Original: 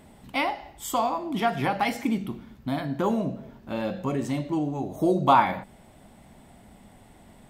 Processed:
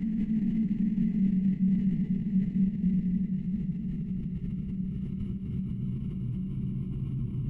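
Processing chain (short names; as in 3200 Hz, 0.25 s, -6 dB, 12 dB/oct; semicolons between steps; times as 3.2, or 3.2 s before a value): self-modulated delay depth 0.28 ms; in parallel at -7.5 dB: sine folder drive 11 dB, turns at -6.5 dBFS; on the sum: passive tone stack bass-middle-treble 6-0-2; Paulstretch 45×, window 0.25 s, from 2.12; transient shaper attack -3 dB, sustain +4 dB; level quantiser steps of 9 dB; tilt -4.5 dB/oct; formant shift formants -2 st; on a send: echo with dull and thin repeats by turns 0.253 s, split 820 Hz, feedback 70%, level -5.5 dB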